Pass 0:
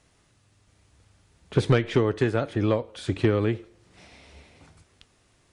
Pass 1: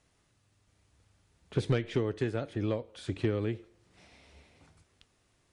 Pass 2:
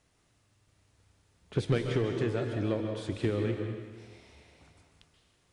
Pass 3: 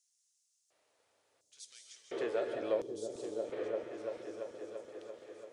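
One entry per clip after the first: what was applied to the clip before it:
dynamic EQ 1100 Hz, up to -5 dB, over -39 dBFS, Q 1.1; gain -7.5 dB
plate-style reverb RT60 1.4 s, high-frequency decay 0.9×, pre-delay 0.12 s, DRR 3.5 dB
LFO high-pass square 0.71 Hz 540–6300 Hz; repeats that get brighter 0.339 s, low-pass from 200 Hz, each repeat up 1 oct, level 0 dB; gain -4.5 dB

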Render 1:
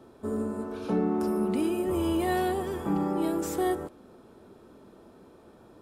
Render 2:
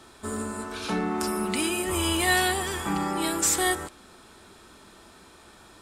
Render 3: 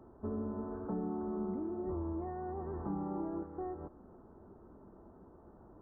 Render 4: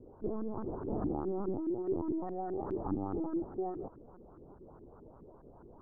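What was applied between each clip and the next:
graphic EQ 125/250/500/2000/4000/8000 Hz -7/-7/-10/+6/+6/+11 dB; gain +7 dB
compressor 6:1, threshold -31 dBFS, peak gain reduction 12 dB; Gaussian blur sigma 10 samples; gain -1 dB
LPC vocoder at 8 kHz pitch kept; LFO low-pass saw up 4.8 Hz 290–1600 Hz

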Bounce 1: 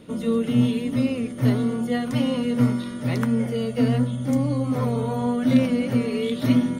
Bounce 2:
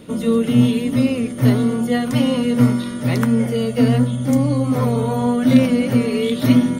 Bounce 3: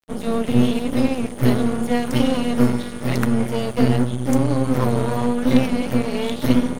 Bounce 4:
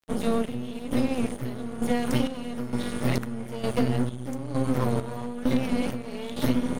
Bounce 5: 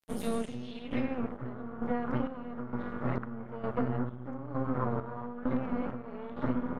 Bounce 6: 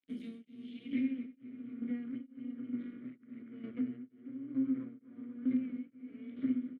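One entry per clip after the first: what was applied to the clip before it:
high shelf 8800 Hz +6 dB; gain +5.5 dB
half-wave gain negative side -12 dB; AGC gain up to 4 dB; crossover distortion -35 dBFS
compressor, threshold -19 dBFS, peak gain reduction 11 dB; chopper 1.1 Hz, depth 65%, duty 50%
low-pass sweep 13000 Hz -> 1300 Hz, 0.23–1.23; gain -7.5 dB
vowel filter i; feedback echo 0.243 s, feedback 44%, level -9 dB; beating tremolo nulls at 1.1 Hz; gain +4.5 dB

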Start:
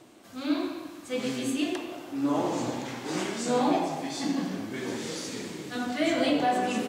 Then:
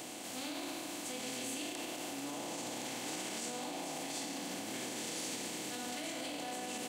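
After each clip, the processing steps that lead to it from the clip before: per-bin compression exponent 0.4; limiter -18 dBFS, peak gain reduction 8 dB; pre-emphasis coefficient 0.8; gain -3 dB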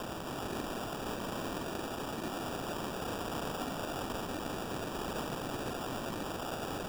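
per-bin compression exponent 0.6; whisperiser; sample-and-hold 21×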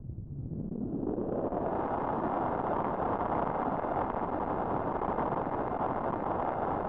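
low-pass sweep 110 Hz -> 950 Hz, 0.29–1.81; air absorption 74 m; core saturation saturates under 430 Hz; gain +6 dB

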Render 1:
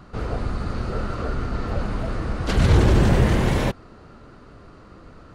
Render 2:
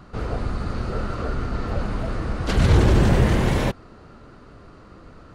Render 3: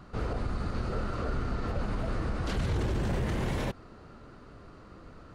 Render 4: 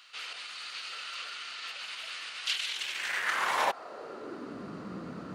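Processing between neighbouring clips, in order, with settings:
nothing audible
limiter -18 dBFS, peak gain reduction 11.5 dB; gain -4.5 dB
high-pass sweep 2900 Hz -> 190 Hz, 2.83–4.7; gain +7.5 dB

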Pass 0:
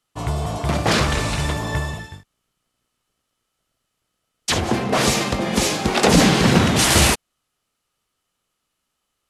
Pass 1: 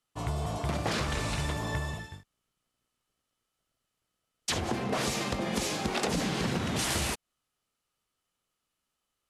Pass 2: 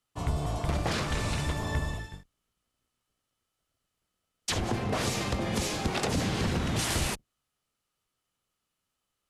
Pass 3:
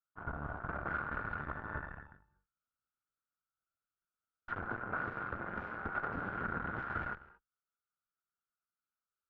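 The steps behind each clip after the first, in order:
compressor 10:1, threshold -19 dBFS, peak gain reduction 10.5 dB; gain -7.5 dB
octaver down 1 oct, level -1 dB
non-linear reverb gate 0.25 s rising, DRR 11 dB; added harmonics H 6 -15 dB, 7 -21 dB, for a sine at -15.5 dBFS; ladder low-pass 1500 Hz, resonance 85%; gain -1 dB

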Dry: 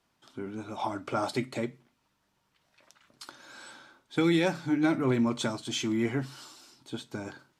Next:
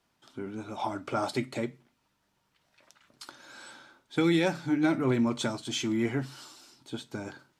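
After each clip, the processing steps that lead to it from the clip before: notch 1100 Hz, Q 29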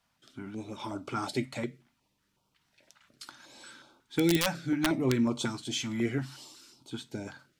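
wrapped overs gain 15 dB; stepped notch 5.5 Hz 370–1800 Hz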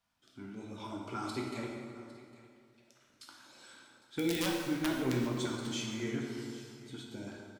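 echo 0.805 s -19 dB; plate-style reverb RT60 2.2 s, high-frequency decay 0.7×, DRR -1 dB; gain -8 dB

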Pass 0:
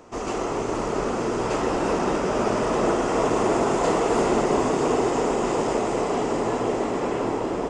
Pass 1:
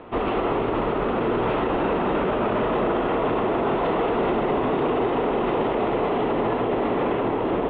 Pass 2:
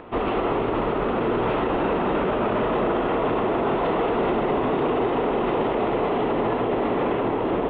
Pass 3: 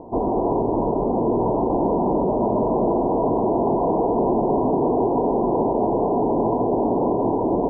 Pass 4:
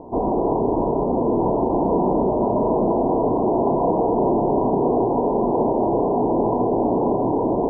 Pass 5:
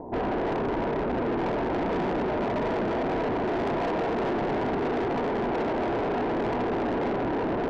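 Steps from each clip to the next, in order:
steep low-pass 3700 Hz 72 dB/oct; limiter -21.5 dBFS, peak gain reduction 9.5 dB; gain +6.5 dB
upward compressor, threshold -43 dBFS
rippled Chebyshev low-pass 1000 Hz, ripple 3 dB; gain +4.5 dB
flutter echo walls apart 5.6 m, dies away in 0.24 s
soft clip -25 dBFS, distortion -8 dB

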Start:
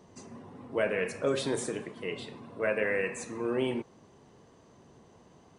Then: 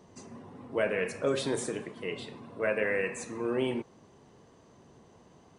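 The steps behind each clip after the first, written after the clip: nothing audible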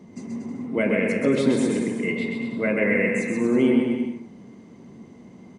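small resonant body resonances 220/2100 Hz, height 17 dB, ringing for 30 ms; on a send: bouncing-ball echo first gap 0.13 s, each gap 0.8×, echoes 5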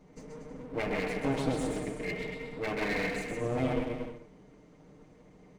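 minimum comb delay 6.6 ms; gain -8.5 dB

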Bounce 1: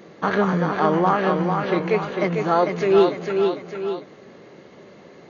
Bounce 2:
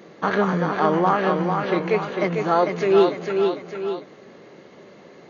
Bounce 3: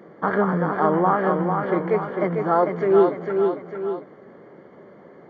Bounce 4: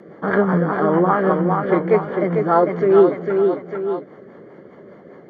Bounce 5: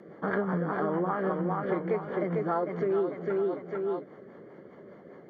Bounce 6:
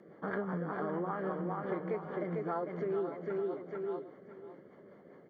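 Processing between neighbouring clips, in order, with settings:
low shelf 76 Hz -10 dB
polynomial smoothing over 41 samples
rotary speaker horn 5 Hz; gain +6 dB
compressor 4:1, threshold -19 dBFS, peak gain reduction 10 dB; gain -7 dB
echo 0.56 s -12.5 dB; gain -7 dB

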